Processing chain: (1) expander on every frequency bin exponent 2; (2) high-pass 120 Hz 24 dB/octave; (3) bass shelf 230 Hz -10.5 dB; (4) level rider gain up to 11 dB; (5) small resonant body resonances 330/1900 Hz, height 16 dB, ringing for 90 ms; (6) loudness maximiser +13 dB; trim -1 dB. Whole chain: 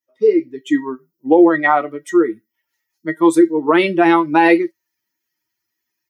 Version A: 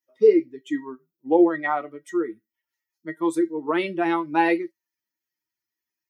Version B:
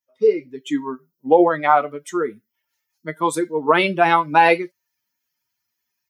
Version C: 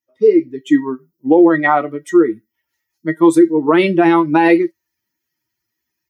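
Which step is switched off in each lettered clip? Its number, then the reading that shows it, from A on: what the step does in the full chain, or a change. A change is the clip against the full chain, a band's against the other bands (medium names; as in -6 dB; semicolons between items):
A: 4, crest factor change +4.0 dB; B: 5, 250 Hz band -10.0 dB; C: 3, 125 Hz band +6.5 dB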